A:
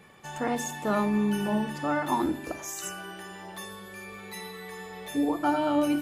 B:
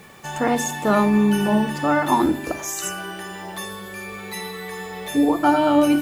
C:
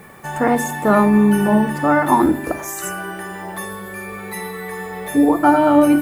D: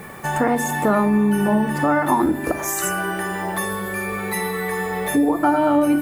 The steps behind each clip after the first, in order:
requantised 10-bit, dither none; gain +8.5 dB
band shelf 4300 Hz -9 dB; gain +4 dB
compressor 2.5:1, threshold -24 dBFS, peak gain reduction 10.5 dB; gain +5 dB

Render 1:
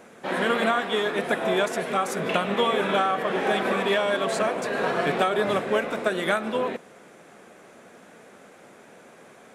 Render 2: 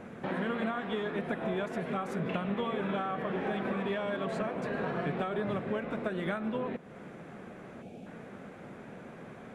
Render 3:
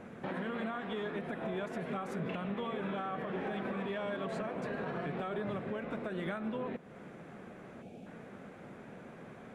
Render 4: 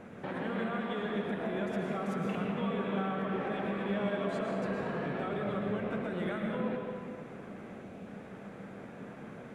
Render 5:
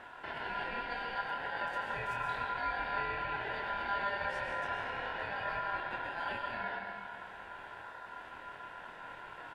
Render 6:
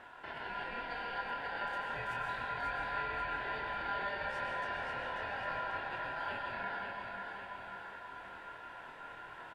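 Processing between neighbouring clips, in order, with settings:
spectral gain 7.82–8.06, 880–2200 Hz -15 dB; tone controls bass +13 dB, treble -13 dB; compressor 2.5:1, threshold -36 dBFS, peak gain reduction 13.5 dB
limiter -25.5 dBFS, peak gain reduction 6 dB; gain -3 dB
reverb RT60 2.0 s, pre-delay 0.106 s, DRR 0.5 dB
reverse; upward compressor, threshold -39 dBFS; reverse; ring modulator 1200 Hz; doubler 25 ms -5 dB; gain -2 dB
feedback echo 0.539 s, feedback 52%, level -5 dB; gain -3 dB

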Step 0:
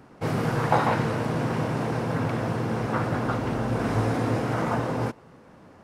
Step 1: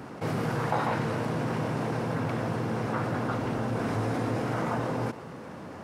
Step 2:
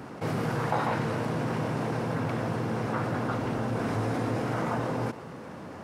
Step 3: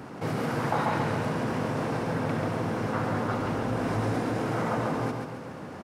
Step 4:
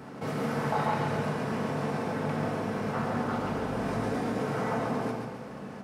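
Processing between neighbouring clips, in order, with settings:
HPF 80 Hz; fast leveller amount 50%; gain -7.5 dB
nothing audible
feedback echo 0.137 s, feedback 46%, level -5 dB
reverb RT60 0.40 s, pre-delay 5 ms, DRR 2 dB; gain -4 dB

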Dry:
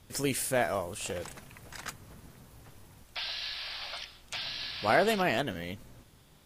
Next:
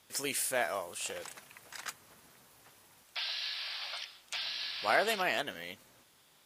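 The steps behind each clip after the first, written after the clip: HPF 890 Hz 6 dB/oct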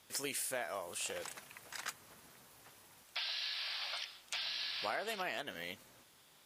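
compressor 5:1, threshold -36 dBFS, peak gain reduction 12.5 dB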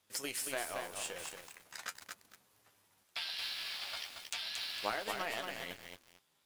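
power-law curve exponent 1.4; flange 0.4 Hz, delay 9.4 ms, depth 3.2 ms, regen +43%; lo-fi delay 0.228 s, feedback 35%, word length 10-bit, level -4 dB; gain +9 dB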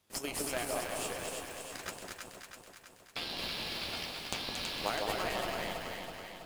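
in parallel at -6 dB: sample-and-hold 23×; on the sum: echo with dull and thin repeats by turns 0.163 s, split 1000 Hz, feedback 76%, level -2 dB

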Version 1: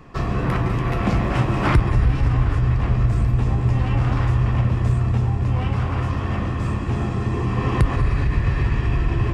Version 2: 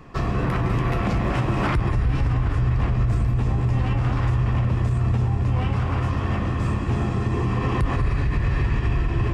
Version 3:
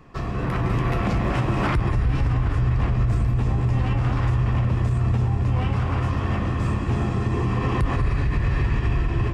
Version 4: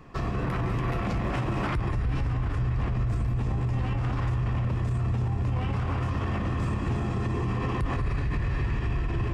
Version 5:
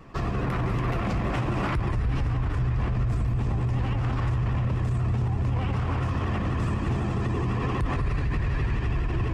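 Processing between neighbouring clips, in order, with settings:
limiter -13.5 dBFS, peak gain reduction 8.5 dB
AGC gain up to 4.5 dB; gain -4.5 dB
limiter -20.5 dBFS, peak gain reduction 7 dB
vibrato 12 Hz 86 cents; gain +1.5 dB

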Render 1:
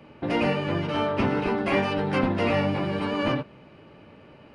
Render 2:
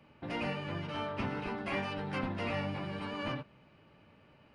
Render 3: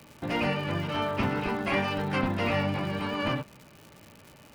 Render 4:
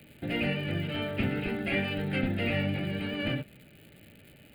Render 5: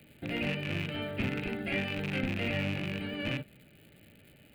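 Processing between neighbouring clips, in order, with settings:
bell 390 Hz -6 dB 1.6 oct; gain -9 dB
crackle 210/s -47 dBFS; gain +8 dB
fixed phaser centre 2500 Hz, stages 4
rattling part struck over -31 dBFS, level -22 dBFS; gain -3.5 dB

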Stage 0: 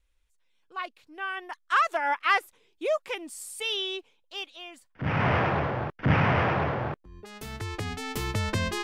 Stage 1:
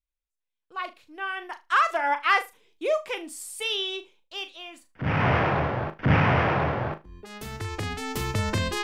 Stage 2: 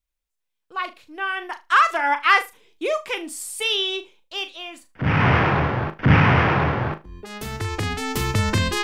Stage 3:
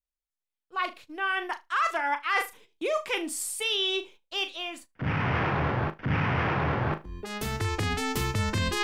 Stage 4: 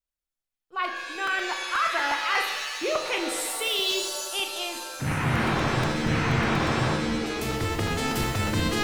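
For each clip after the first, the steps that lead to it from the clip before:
gate with hold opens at -58 dBFS; on a send: flutter echo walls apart 6.6 m, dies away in 0.22 s; on the sum: gain +1.5 dB
dynamic EQ 620 Hz, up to -6 dB, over -40 dBFS, Q 1.9; gain +6 dB
gate -47 dBFS, range -12 dB; reverse; compressor 6:1, threshold -24 dBFS, peak gain reduction 14 dB; reverse
crackling interface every 0.12 s, samples 128, repeat, from 0.91; shimmer reverb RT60 1.6 s, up +7 st, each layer -2 dB, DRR 5.5 dB

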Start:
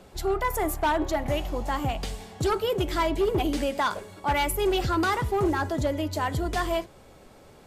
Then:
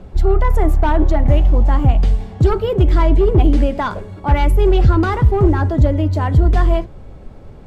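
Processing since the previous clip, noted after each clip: RIAA curve playback; gain +4.5 dB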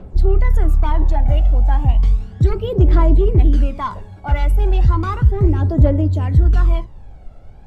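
phaser 0.34 Hz, delay 1.5 ms, feedback 61%; gain -7 dB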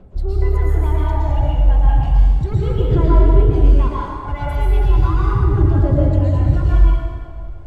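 plate-style reverb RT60 2 s, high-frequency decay 0.7×, pre-delay 0.1 s, DRR -6.5 dB; gain -8 dB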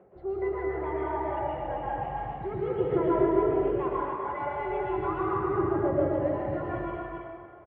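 speaker cabinet 240–2400 Hz, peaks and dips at 260 Hz -9 dB, 370 Hz +8 dB, 520 Hz +4 dB, 750 Hz +6 dB, 1200 Hz +3 dB, 1900 Hz +5 dB; echo 0.275 s -3.5 dB; gain -8.5 dB

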